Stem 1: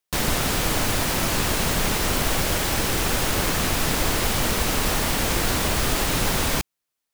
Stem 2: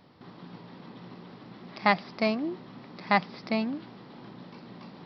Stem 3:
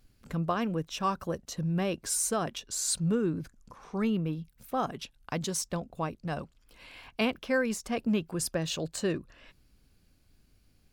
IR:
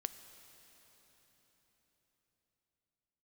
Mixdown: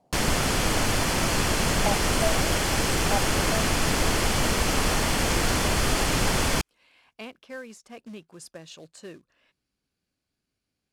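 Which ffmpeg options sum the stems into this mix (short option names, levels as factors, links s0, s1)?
-filter_complex "[0:a]bandreject=f=3800:w=12,volume=0.944[s0];[1:a]lowpass=f=710:t=q:w=4.9,volume=0.266[s1];[2:a]highpass=f=250:p=1,acrusher=bits=4:mode=log:mix=0:aa=0.000001,volume=0.299[s2];[s0][s1][s2]amix=inputs=3:normalize=0,lowpass=10000"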